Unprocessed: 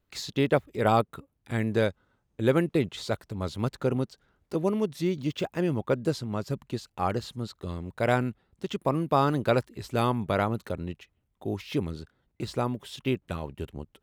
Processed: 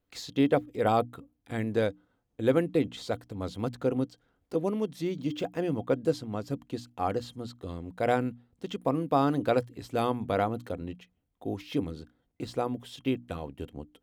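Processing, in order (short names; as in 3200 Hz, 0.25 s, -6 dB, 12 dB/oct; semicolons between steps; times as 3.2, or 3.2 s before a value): notches 60/120/180/240/300 Hz; small resonant body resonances 280/490/710/3200 Hz, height 9 dB, ringing for 65 ms; gain -4.5 dB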